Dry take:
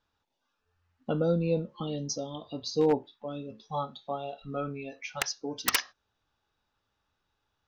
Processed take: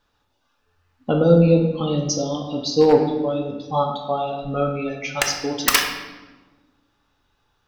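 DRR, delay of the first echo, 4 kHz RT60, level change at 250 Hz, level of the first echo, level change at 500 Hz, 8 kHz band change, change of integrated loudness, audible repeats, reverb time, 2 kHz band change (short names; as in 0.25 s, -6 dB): 2.0 dB, none, 0.85 s, +12.5 dB, none, +12.0 dB, +10.0 dB, +11.5 dB, none, 1.3 s, +11.0 dB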